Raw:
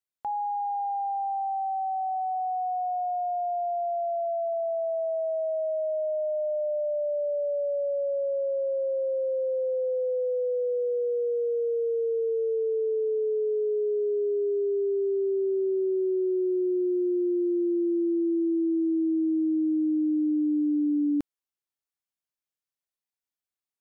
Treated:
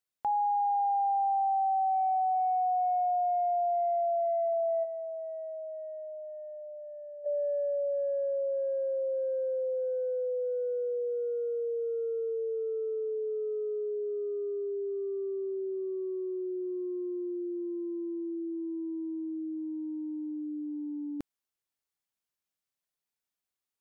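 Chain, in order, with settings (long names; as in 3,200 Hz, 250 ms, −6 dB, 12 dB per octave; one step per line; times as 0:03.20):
0:04.84–0:07.25: dynamic equaliser 580 Hz, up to +7 dB, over −42 dBFS, Q 3.5
compressor whose output falls as the input rises −29 dBFS, ratio −0.5
level −2 dB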